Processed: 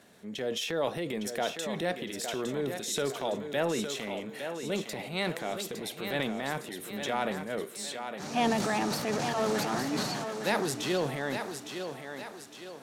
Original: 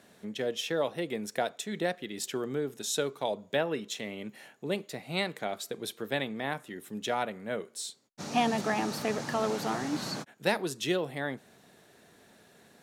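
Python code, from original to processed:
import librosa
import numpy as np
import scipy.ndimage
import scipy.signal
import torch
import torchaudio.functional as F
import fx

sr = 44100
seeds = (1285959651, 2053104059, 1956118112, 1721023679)

y = fx.transient(x, sr, attack_db=-4, sustain_db=8)
y = fx.echo_thinned(y, sr, ms=860, feedback_pct=47, hz=210.0, wet_db=-7)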